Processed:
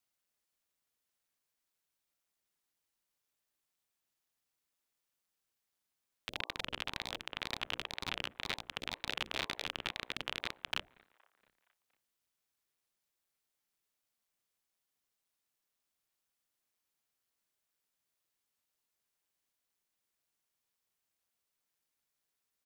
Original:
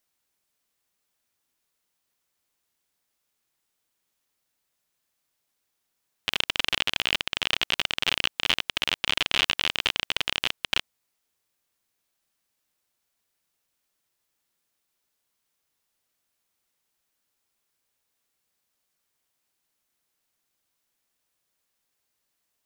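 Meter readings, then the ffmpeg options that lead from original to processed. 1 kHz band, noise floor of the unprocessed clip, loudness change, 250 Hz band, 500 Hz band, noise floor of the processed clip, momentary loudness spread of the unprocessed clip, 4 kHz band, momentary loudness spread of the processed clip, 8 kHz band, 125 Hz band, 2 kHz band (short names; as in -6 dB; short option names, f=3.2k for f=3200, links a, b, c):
-9.5 dB, -79 dBFS, -14.0 dB, -8.0 dB, -8.5 dB, under -85 dBFS, 4 LU, -15.5 dB, 3 LU, -14.0 dB, -7.5 dB, -13.0 dB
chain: -filter_complex "[0:a]bandreject=f=60:t=h:w=6,bandreject=f=120:t=h:w=6,bandreject=f=180:t=h:w=6,bandreject=f=240:t=h:w=6,bandreject=f=300:t=h:w=6,bandreject=f=360:t=h:w=6,bandreject=f=420:t=h:w=6,acrossover=split=320|1600[a][b][c];[b]asplit=6[d][e][f][g][h][i];[e]adelay=234,afreqshift=93,volume=-21dB[j];[f]adelay=468,afreqshift=186,volume=-25.2dB[k];[g]adelay=702,afreqshift=279,volume=-29.3dB[l];[h]adelay=936,afreqshift=372,volume=-33.5dB[m];[i]adelay=1170,afreqshift=465,volume=-37.6dB[n];[d][j][k][l][m][n]amix=inputs=6:normalize=0[o];[c]alimiter=limit=-16.5dB:level=0:latency=1:release=32[p];[a][o][p]amix=inputs=3:normalize=0,aeval=exprs='val(0)*sin(2*PI*420*n/s+420*0.8/2*sin(2*PI*2*n/s))':c=same,volume=-5dB"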